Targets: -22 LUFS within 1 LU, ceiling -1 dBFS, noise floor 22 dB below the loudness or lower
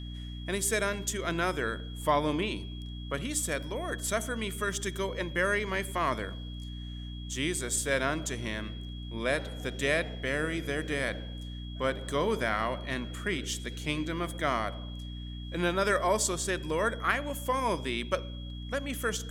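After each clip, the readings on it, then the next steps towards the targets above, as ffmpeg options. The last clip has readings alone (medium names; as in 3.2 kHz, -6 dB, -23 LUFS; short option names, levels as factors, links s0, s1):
hum 60 Hz; highest harmonic 300 Hz; hum level -37 dBFS; steady tone 3.3 kHz; tone level -48 dBFS; loudness -31.5 LUFS; peak level -11.5 dBFS; loudness target -22.0 LUFS
-> -af "bandreject=f=60:t=h:w=6,bandreject=f=120:t=h:w=6,bandreject=f=180:t=h:w=6,bandreject=f=240:t=h:w=6,bandreject=f=300:t=h:w=6"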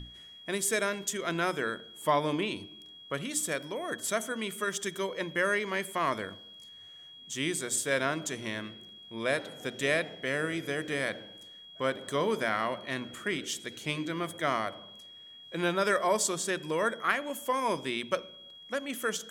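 hum not found; steady tone 3.3 kHz; tone level -48 dBFS
-> -af "bandreject=f=3300:w=30"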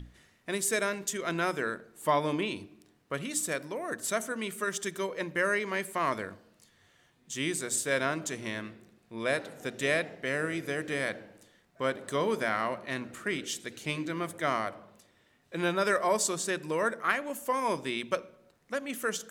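steady tone not found; loudness -31.5 LUFS; peak level -12.0 dBFS; loudness target -22.0 LUFS
-> -af "volume=2.99"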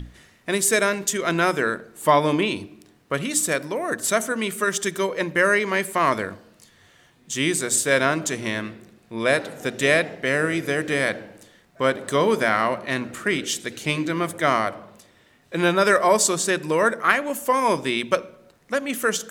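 loudness -22.0 LUFS; peak level -2.5 dBFS; noise floor -57 dBFS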